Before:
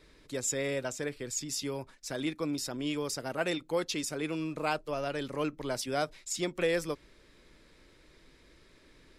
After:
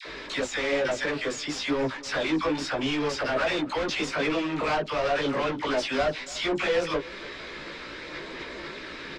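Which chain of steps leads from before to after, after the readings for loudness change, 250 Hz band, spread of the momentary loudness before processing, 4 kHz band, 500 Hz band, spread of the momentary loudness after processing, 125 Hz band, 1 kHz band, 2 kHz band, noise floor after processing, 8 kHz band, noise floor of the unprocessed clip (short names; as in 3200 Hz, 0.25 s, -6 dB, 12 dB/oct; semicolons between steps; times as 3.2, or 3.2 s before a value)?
+5.5 dB, +5.5 dB, 6 LU, +8.0 dB, +6.5 dB, 12 LU, +2.5 dB, +8.5 dB, +10.0 dB, -40 dBFS, -4.0 dB, -61 dBFS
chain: in parallel at +3 dB: compressor, threshold -43 dBFS, peak gain reduction 17 dB; on the sum: dispersion lows, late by 59 ms, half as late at 880 Hz; overdrive pedal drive 29 dB, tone 6100 Hz, clips at -16 dBFS; chorus voices 6, 0.99 Hz, delay 17 ms, depth 3 ms; air absorption 130 m; on a send: echo 0.289 s -20.5 dB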